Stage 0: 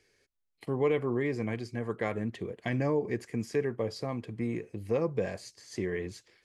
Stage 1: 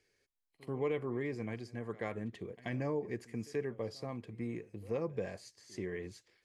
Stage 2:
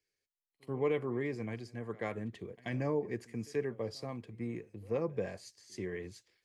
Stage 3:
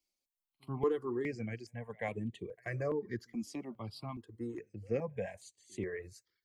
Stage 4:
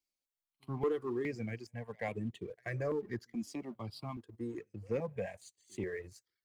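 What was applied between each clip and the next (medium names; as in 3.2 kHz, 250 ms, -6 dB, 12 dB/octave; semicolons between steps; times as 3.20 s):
reverse echo 84 ms -21 dB; trim -7 dB
three bands expanded up and down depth 40%; trim +1.5 dB
reverb removal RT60 0.81 s; stepped phaser 2.4 Hz 440–5200 Hz; trim +3 dB
waveshaping leveller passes 1; trim -3.5 dB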